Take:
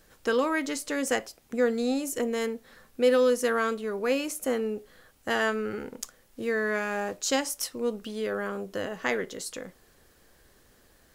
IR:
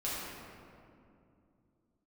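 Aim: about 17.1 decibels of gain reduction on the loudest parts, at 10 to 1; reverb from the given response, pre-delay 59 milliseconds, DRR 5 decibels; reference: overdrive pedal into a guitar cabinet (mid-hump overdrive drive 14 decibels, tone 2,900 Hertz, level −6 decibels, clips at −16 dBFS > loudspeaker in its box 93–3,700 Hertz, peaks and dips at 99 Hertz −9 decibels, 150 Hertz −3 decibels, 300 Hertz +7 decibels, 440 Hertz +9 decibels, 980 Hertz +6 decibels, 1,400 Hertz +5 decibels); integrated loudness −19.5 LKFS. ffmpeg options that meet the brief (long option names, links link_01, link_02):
-filter_complex "[0:a]acompressor=threshold=-36dB:ratio=10,asplit=2[link_01][link_02];[1:a]atrim=start_sample=2205,adelay=59[link_03];[link_02][link_03]afir=irnorm=-1:irlink=0,volume=-10dB[link_04];[link_01][link_04]amix=inputs=2:normalize=0,asplit=2[link_05][link_06];[link_06]highpass=frequency=720:poles=1,volume=14dB,asoftclip=type=tanh:threshold=-16dB[link_07];[link_05][link_07]amix=inputs=2:normalize=0,lowpass=frequency=2900:poles=1,volume=-6dB,highpass=93,equalizer=frequency=99:width_type=q:width=4:gain=-9,equalizer=frequency=150:width_type=q:width=4:gain=-3,equalizer=frequency=300:width_type=q:width=4:gain=7,equalizer=frequency=440:width_type=q:width=4:gain=9,equalizer=frequency=980:width_type=q:width=4:gain=6,equalizer=frequency=1400:width_type=q:width=4:gain=5,lowpass=frequency=3700:width=0.5412,lowpass=frequency=3700:width=1.3066,volume=10.5dB"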